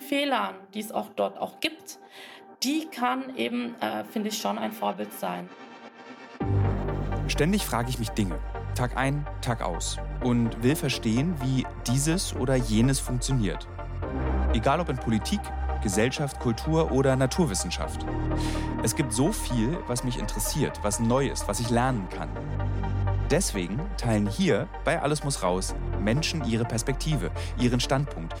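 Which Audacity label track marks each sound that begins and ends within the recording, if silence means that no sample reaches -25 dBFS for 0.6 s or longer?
2.620000	5.400000	sound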